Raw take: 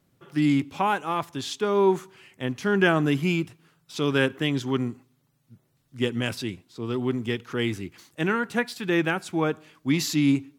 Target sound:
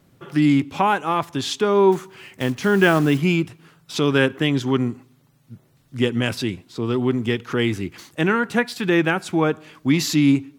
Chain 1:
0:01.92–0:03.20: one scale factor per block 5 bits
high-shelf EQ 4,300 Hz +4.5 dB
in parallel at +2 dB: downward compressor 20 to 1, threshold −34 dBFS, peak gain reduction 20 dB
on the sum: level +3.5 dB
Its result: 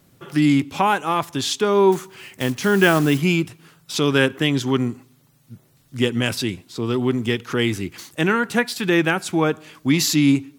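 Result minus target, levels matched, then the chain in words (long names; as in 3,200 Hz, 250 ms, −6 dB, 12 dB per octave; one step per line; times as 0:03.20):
8,000 Hz band +5.0 dB
0:01.92–0:03.20: one scale factor per block 5 bits
high-shelf EQ 4,300 Hz −3.5 dB
in parallel at +2 dB: downward compressor 20 to 1, threshold −34 dBFS, peak gain reduction 19.5 dB
on the sum: level +3.5 dB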